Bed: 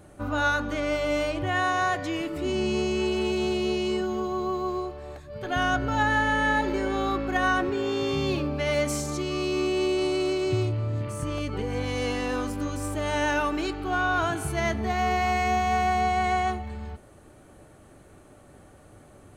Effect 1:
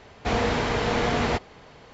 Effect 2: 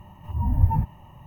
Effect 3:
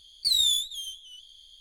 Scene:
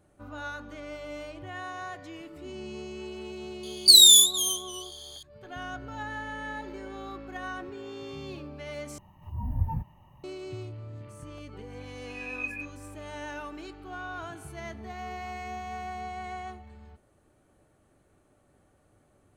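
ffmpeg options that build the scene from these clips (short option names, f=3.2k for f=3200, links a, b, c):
-filter_complex "[2:a]asplit=2[a][b];[0:a]volume=-13.5dB[c];[3:a]aexciter=amount=14:drive=7.7:freq=3.2k[d];[b]lowpass=f=2.2k:t=q:w=0.5098,lowpass=f=2.2k:t=q:w=0.6013,lowpass=f=2.2k:t=q:w=0.9,lowpass=f=2.2k:t=q:w=2.563,afreqshift=-2600[e];[c]asplit=2[f][g];[f]atrim=end=8.984[h];[a]atrim=end=1.26,asetpts=PTS-STARTPTS,volume=-9dB[i];[g]atrim=start=10.236[j];[d]atrim=end=1.6,asetpts=PTS-STARTPTS,volume=-13dB,afade=t=in:d=0.004:c=hsin,afade=t=out:st=1.596:d=0.004:c=hsin,adelay=3630[k];[e]atrim=end=1.26,asetpts=PTS-STARTPTS,volume=-17.5dB,afade=t=in:d=0.004:c=hsin,afade=t=out:st=1.256:d=0.004:c=hsin,adelay=11800[l];[h][i]acrossfade=d=0.004:c1=hsin:c2=hsin[m];[m][j]acrossfade=d=0.004:c1=hsin:c2=hsin[n];[n][k][l]amix=inputs=3:normalize=0"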